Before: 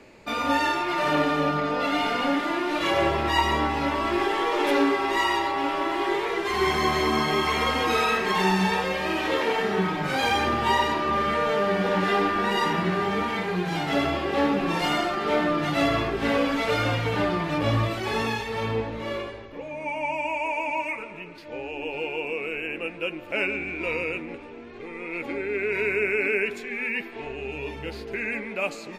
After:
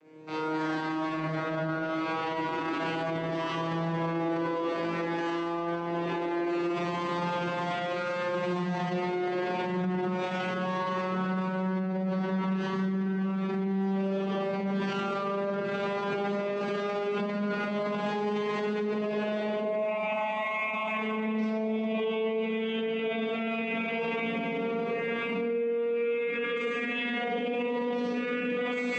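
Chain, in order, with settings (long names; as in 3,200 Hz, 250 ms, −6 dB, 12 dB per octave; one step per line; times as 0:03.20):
vocoder with a gliding carrier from D#3, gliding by +8 semitones
automatic gain control gain up to 14.5 dB
four-comb reverb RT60 1.7 s, combs from 32 ms, DRR −9 dB
brickwall limiter −15.5 dBFS, peak gain reduction 25.5 dB
level −8 dB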